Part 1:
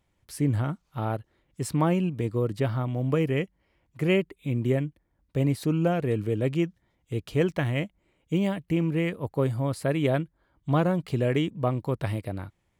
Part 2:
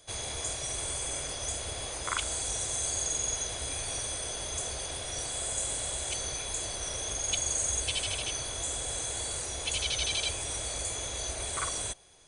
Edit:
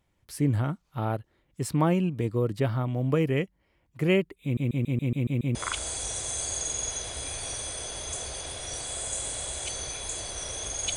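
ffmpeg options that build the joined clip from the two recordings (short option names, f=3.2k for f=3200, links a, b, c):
-filter_complex "[0:a]apad=whole_dur=10.96,atrim=end=10.96,asplit=8[a][b][c][d][e][f][g][h];[a]atrim=end=4.572[i];[b]atrim=start=4.428:end=4.572[j];[c]atrim=start=4.428:end=4.572[k];[d]atrim=start=4.428:end=4.572[l];[e]atrim=start=4.428:end=4.572[m];[f]atrim=start=4.428:end=4.572[n];[g]atrim=start=4.428:end=4.572[o];[h]atrim=start=4.428:end=4.572[p];[1:a]atrim=start=1.998:end=7.41[q];[i][j]acrossfade=d=0.004:c1=hsin:c2=hsin[r];[r][k]acrossfade=d=0.004:c1=hsin:c2=hsin[s];[s][l]acrossfade=d=0.004:c1=hsin:c2=hsin[t];[t][m]acrossfade=d=0.004:c1=hsin:c2=hsin[u];[u][n]acrossfade=d=0.004:c1=hsin:c2=hsin[v];[v][o]acrossfade=d=0.004:c1=hsin:c2=hsin[w];[w][p]acrossfade=d=0.004:c1=hsin:c2=hsin[x];[x][q]acrossfade=d=0.004:c1=hsin:c2=hsin"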